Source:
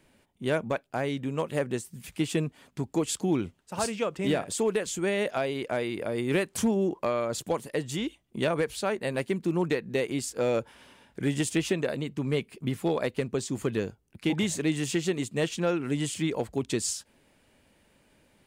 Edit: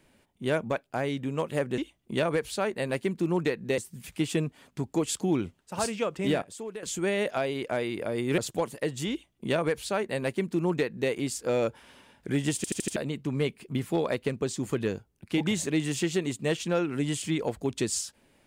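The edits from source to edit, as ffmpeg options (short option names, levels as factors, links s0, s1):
-filter_complex "[0:a]asplit=11[s0][s1][s2][s3][s4][s5][s6][s7][s8][s9][s10];[s0]atrim=end=1.782[s11];[s1]atrim=start=8.028:end=10.032[s12];[s2]atrim=start=1.778:end=4.422[s13];[s3]atrim=start=4.418:end=4.832,asetpts=PTS-STARTPTS,volume=0.266[s14];[s4]atrim=start=4.828:end=6.382[s15];[s5]atrim=start=7.298:end=11.562[s16];[s6]atrim=start=11.478:end=11.562[s17];[s7]atrim=start=11.478:end=11.562[s18];[s8]atrim=start=11.478:end=11.562[s19];[s9]atrim=start=11.478:end=11.562[s20];[s10]atrim=start=11.878[s21];[s11][s12]acrossfade=d=0.004:c1=hsin:c2=hsin[s22];[s22][s13]acrossfade=d=0.004:c1=hsin:c2=hsin[s23];[s23][s14]acrossfade=d=0.004:c1=hsin:c2=hsin[s24];[s24][s15]acrossfade=d=0.004:c1=hsin:c2=hsin[s25];[s25][s16]acrossfade=d=0.004:c1=hsin:c2=hsin[s26];[s26][s17]acrossfade=d=0.004:c1=hsin:c2=hsin[s27];[s27][s18]acrossfade=d=0.004:c1=hsin:c2=hsin[s28];[s28][s19]acrossfade=d=0.004:c1=hsin:c2=hsin[s29];[s29][s20]acrossfade=d=0.004:c1=hsin:c2=hsin[s30];[s30][s21]acrossfade=d=0.004:c1=hsin:c2=hsin"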